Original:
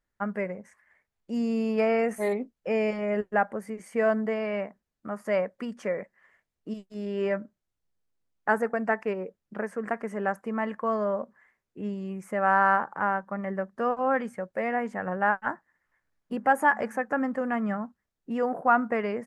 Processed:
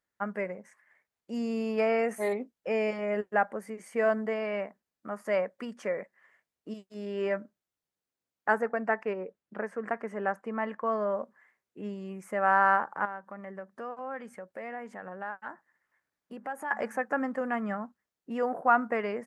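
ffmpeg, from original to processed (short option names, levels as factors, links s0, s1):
-filter_complex "[0:a]asettb=1/sr,asplit=3[s0][s1][s2];[s0]atrim=end=8.554[s3];[s1]atrim=start=8.55:end=11.1,asetpts=PTS-STARTPTS,afade=t=in:d=0.004:c=qsin,afade=t=out:st=2.546:d=0.004:c=qsin,highshelf=f=6200:g=-11.5[s4];[s2]atrim=start=11.096[s5];[s3][s4]acrossfade=d=0.004:c1=hsin:c2=qsin[s6];[s6][s5]acrossfade=d=0.004:c1=qsin:c2=hsin,asettb=1/sr,asplit=3[s7][s8][s9];[s7]atrim=end=13.054[s10];[s8]atrim=start=13.05:end=16.71,asetpts=PTS-STARTPTS,afade=t=in:d=0.004:c=qsin,afade=t=out:st=3.656:d=0.004:c=qsin,acompressor=threshold=0.00891:ratio=2:attack=3.2:release=140:knee=1:detection=peak[s11];[s9]atrim=start=16.706[s12];[s10][s11]acrossfade=d=0.004:c1=hsin:c2=qsin[s13];[s13][s12]acrossfade=d=0.004:c1=qsin:c2=hsin,highpass=f=270:p=1,volume=0.891"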